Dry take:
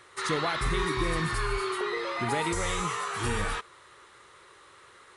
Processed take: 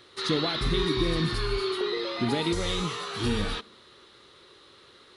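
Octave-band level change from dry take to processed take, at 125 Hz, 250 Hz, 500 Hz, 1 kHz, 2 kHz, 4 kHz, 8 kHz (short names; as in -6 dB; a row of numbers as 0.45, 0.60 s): +3.0, +5.5, +3.0, -4.5, -3.5, +6.5, -5.0 dB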